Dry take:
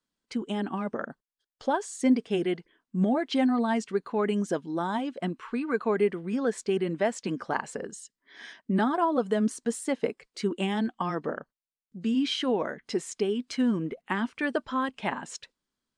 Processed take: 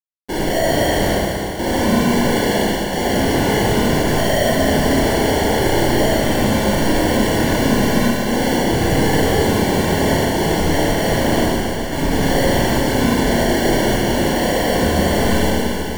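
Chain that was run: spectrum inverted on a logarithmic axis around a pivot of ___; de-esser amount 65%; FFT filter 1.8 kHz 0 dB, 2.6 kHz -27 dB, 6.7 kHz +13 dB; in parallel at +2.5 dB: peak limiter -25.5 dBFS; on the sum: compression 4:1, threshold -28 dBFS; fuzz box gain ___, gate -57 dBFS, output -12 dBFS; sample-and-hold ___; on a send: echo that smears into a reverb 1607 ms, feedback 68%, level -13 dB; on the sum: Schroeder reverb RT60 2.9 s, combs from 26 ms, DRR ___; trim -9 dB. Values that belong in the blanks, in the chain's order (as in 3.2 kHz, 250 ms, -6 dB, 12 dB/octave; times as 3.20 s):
1.3 kHz, 58 dB, 35×, -6.5 dB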